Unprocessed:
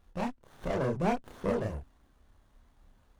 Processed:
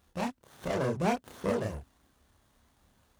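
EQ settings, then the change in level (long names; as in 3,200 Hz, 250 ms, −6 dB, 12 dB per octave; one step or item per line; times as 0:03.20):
high-pass filter 69 Hz 12 dB per octave
high-shelf EQ 3,300 Hz +8.5 dB
0.0 dB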